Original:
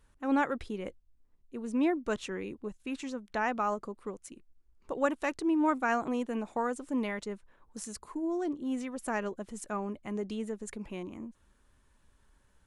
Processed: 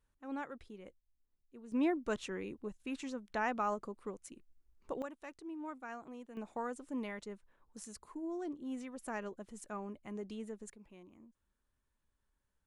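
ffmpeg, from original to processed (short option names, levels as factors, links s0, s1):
-af "asetnsamples=n=441:p=0,asendcmd='1.72 volume volume -4dB;5.02 volume volume -17dB;6.37 volume volume -8dB;10.7 volume volume -17dB',volume=0.2"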